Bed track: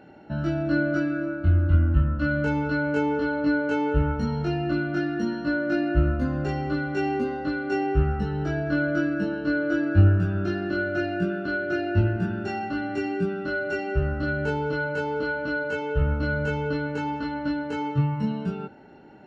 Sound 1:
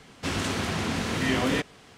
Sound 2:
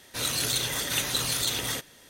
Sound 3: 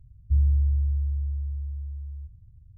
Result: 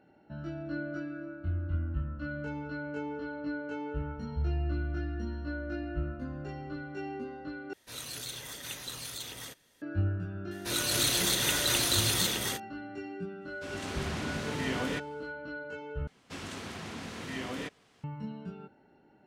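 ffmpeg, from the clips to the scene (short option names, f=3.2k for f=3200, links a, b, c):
-filter_complex "[2:a]asplit=2[a][b];[1:a]asplit=2[c][d];[0:a]volume=-13dB[e];[b]aecho=1:1:134.1|259.5:0.355|1[f];[c]dynaudnorm=f=130:g=7:m=11.5dB[g];[d]lowshelf=f=80:g=-6.5[h];[e]asplit=3[i][j][k];[i]atrim=end=7.734[l];[a]atrim=end=2.09,asetpts=PTS-STARTPTS,volume=-13dB[m];[j]atrim=start=9.816:end=16.074[n];[h]atrim=end=1.97,asetpts=PTS-STARTPTS,volume=-12dB[o];[k]atrim=start=18.036[p];[3:a]atrim=end=2.77,asetpts=PTS-STARTPTS,volume=-10.5dB,afade=t=in:d=0.004:c=hsin,afade=t=out:st=2.766:d=0.004:c=hsin,adelay=4060[q];[f]atrim=end=2.09,asetpts=PTS-STARTPTS,volume=-3dB,afade=t=in:d=0.004:c=hsin,afade=t=out:st=2.086:d=0.004:c=hsin,adelay=10510[r];[g]atrim=end=1.97,asetpts=PTS-STARTPTS,volume=-18dB,afade=t=in:d=0.1,afade=t=out:st=1.87:d=0.1,adelay=13380[s];[l][m]acrossfade=d=0.004:c1=hsin:c2=hsin[t];[t][n]acrossfade=d=0.004:c1=hsin:c2=hsin[u];[u][o]acrossfade=d=0.004:c1=hsin:c2=hsin[v];[v][p]acrossfade=d=0.004:c1=hsin:c2=hsin[w];[w][q][r][s]amix=inputs=4:normalize=0"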